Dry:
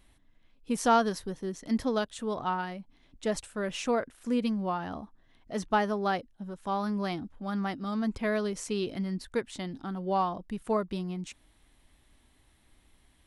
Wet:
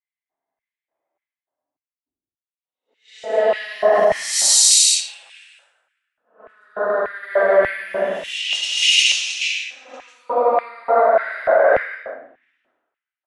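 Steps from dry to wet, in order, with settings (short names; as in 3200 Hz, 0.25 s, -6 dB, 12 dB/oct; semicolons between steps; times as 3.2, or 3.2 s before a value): reverse; compressor 12:1, threshold -35 dBFS, peak gain reduction 17 dB; reverse; Paulstretch 11×, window 0.10 s, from 2.96; on a send: frequency-shifting echo 0.166 s, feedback 31%, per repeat +69 Hz, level -13 dB; on the sum: low-pass opened by the level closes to 860 Hz, open at -36 dBFS; bell 220 Hz -3.5 dB 0.23 oct; LFO high-pass square 1.7 Hz 660–2200 Hz; maximiser +27.5 dB; three-band expander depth 100%; gain -9 dB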